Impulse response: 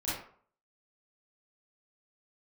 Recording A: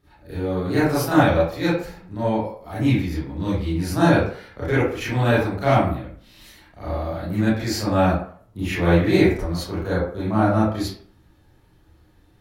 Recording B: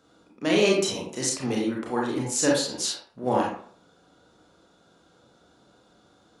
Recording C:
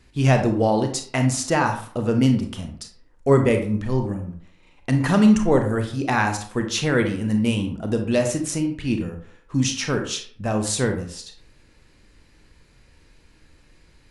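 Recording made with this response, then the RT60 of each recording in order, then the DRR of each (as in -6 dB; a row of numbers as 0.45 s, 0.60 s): A; 0.50 s, 0.50 s, 0.50 s; -10.5 dB, -3.0 dB, 5.0 dB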